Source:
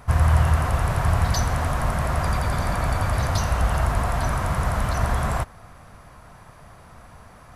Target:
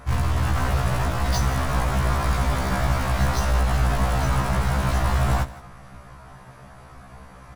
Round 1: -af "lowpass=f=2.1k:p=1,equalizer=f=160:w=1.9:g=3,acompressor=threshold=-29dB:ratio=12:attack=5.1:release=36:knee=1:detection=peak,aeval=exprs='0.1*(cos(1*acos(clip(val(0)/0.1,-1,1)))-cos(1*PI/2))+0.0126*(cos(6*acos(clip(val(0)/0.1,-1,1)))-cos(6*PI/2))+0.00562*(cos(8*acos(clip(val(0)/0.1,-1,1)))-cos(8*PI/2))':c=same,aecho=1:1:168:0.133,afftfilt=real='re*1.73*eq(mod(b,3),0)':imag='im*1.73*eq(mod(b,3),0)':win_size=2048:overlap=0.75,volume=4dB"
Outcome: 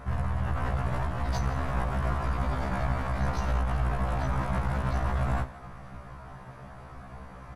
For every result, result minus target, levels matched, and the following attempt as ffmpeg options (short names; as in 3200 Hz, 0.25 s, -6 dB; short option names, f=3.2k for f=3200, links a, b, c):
8000 Hz band -9.0 dB; compressor: peak gain reduction +8.5 dB
-af "lowpass=f=8.2k:p=1,equalizer=f=160:w=1.9:g=3,acompressor=threshold=-29dB:ratio=12:attack=5.1:release=36:knee=1:detection=peak,aeval=exprs='0.1*(cos(1*acos(clip(val(0)/0.1,-1,1)))-cos(1*PI/2))+0.0126*(cos(6*acos(clip(val(0)/0.1,-1,1)))-cos(6*PI/2))+0.00562*(cos(8*acos(clip(val(0)/0.1,-1,1)))-cos(8*PI/2))':c=same,aecho=1:1:168:0.133,afftfilt=real='re*1.73*eq(mod(b,3),0)':imag='im*1.73*eq(mod(b,3),0)':win_size=2048:overlap=0.75,volume=4dB"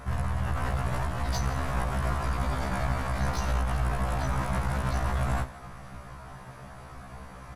compressor: peak gain reduction +8.5 dB
-af "lowpass=f=8.2k:p=1,equalizer=f=160:w=1.9:g=3,acompressor=threshold=-19.5dB:ratio=12:attack=5.1:release=36:knee=1:detection=peak,aeval=exprs='0.1*(cos(1*acos(clip(val(0)/0.1,-1,1)))-cos(1*PI/2))+0.0126*(cos(6*acos(clip(val(0)/0.1,-1,1)))-cos(6*PI/2))+0.00562*(cos(8*acos(clip(val(0)/0.1,-1,1)))-cos(8*PI/2))':c=same,aecho=1:1:168:0.133,afftfilt=real='re*1.73*eq(mod(b,3),0)':imag='im*1.73*eq(mod(b,3),0)':win_size=2048:overlap=0.75,volume=4dB"